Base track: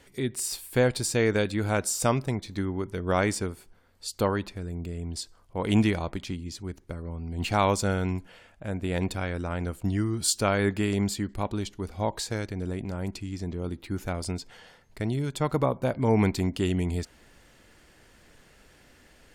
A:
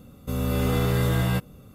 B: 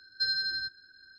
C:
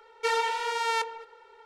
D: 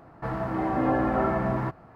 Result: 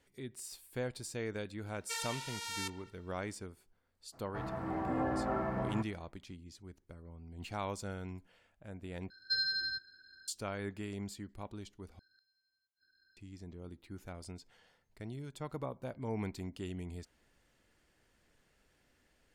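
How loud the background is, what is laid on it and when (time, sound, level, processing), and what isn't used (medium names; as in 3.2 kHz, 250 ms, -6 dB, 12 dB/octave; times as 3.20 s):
base track -15.5 dB
1.66 s: add C -1 dB + pre-emphasis filter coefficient 0.97
4.12 s: add D -10 dB, fades 0.02 s
9.10 s: replace with B -3.5 dB
11.99 s: replace with B -16.5 dB + inverted gate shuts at -38 dBFS, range -34 dB
not used: A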